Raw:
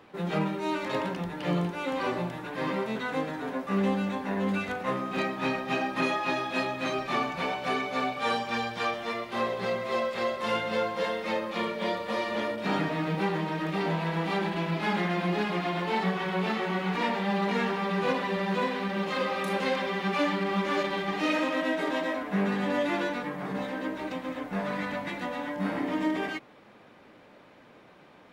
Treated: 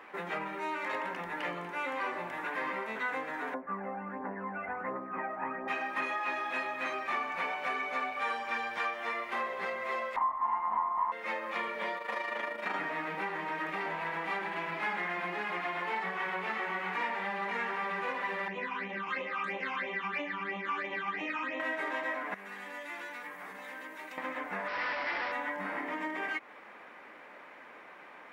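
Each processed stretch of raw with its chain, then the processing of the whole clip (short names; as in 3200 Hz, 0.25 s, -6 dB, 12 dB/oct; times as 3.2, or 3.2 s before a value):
3.54–5.68 Gaussian blur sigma 5.7 samples + phaser 1.4 Hz, delay 1.6 ms, feedback 56%
10.16–11.12 minimum comb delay 1 ms + synth low-pass 980 Hz, resonance Q 6
11.98–12.75 AM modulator 26 Hz, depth 40% + low shelf 150 Hz -9.5 dB
18.48–21.6 air absorption 110 m + phaser stages 8, 3 Hz, lowest notch 520–1500 Hz
22.34–24.18 pre-emphasis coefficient 0.8 + compressor 4:1, threshold -43 dBFS
24.68–25.32 tone controls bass -15 dB, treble -13 dB + Schmitt trigger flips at -47.5 dBFS + careless resampling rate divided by 4×, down none, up filtered
whole clip: low shelf 180 Hz -11.5 dB; compressor 4:1, threshold -38 dBFS; graphic EQ 125/1000/2000/4000 Hz -10/+5/+10/-6 dB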